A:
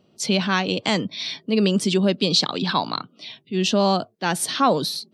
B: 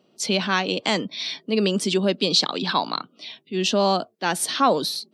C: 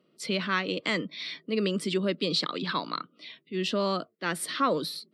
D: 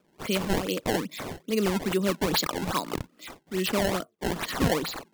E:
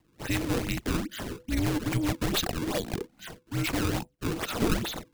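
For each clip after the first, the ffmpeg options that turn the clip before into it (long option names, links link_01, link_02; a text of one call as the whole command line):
ffmpeg -i in.wav -af "highpass=220" out.wav
ffmpeg -i in.wav -af "equalizer=frequency=160:width_type=o:width=0.33:gain=6,equalizer=frequency=315:width_type=o:width=0.33:gain=5,equalizer=frequency=500:width_type=o:width=0.33:gain=4,equalizer=frequency=800:width_type=o:width=0.33:gain=-11,equalizer=frequency=1250:width_type=o:width=0.33:gain=7,equalizer=frequency=2000:width_type=o:width=0.33:gain=8,equalizer=frequency=6300:width_type=o:width=0.33:gain=-10,volume=-8dB" out.wav
ffmpeg -i in.wav -af "acrusher=samples=21:mix=1:aa=0.000001:lfo=1:lforange=33.6:lforate=2.4,volume=2dB" out.wav
ffmpeg -i in.wav -af "afreqshift=-500,aeval=exprs='clip(val(0),-1,0.0447)':channel_layout=same" out.wav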